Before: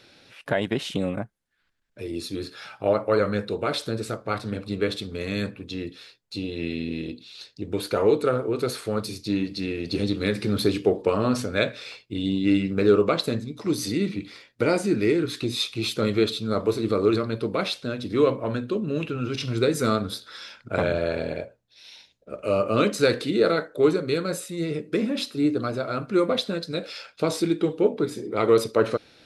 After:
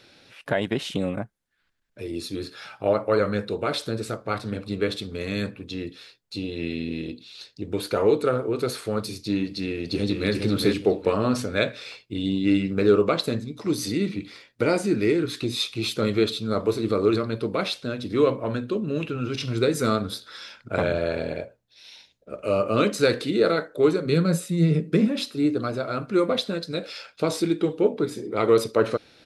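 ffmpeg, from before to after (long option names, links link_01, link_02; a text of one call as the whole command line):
ffmpeg -i in.wav -filter_complex "[0:a]asplit=2[link_01][link_02];[link_02]afade=type=in:start_time=9.68:duration=0.01,afade=type=out:start_time=10.32:duration=0.01,aecho=0:1:410|820|1230:0.630957|0.157739|0.0394348[link_03];[link_01][link_03]amix=inputs=2:normalize=0,asettb=1/sr,asplit=3[link_04][link_05][link_06];[link_04]atrim=end=24.054[link_07];[link_05]atrim=start=24.05:end=25.08,asetpts=PTS-STARTPTS,afade=type=in:duration=0.004:curve=qsin,afade=type=out:start_time=1.026:duration=0.004:curve=qsin,highpass=frequency=160:width_type=q:width=4.9[link_08];[link_06]atrim=start=25.076[link_09];[link_07][link_08]acrossfade=duration=0.004:curve1=hsin:curve2=qsin[link_10];[link_10][link_09]acrossfade=duration=0.004:curve1=qsin:curve2=hsin" out.wav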